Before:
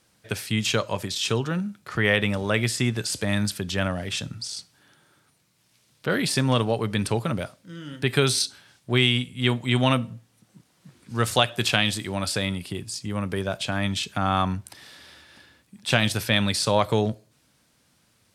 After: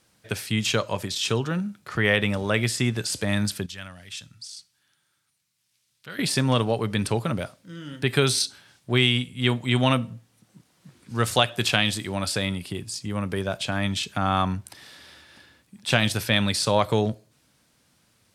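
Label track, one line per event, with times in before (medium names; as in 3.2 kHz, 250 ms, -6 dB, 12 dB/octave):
3.660000	6.190000	amplifier tone stack bass-middle-treble 5-5-5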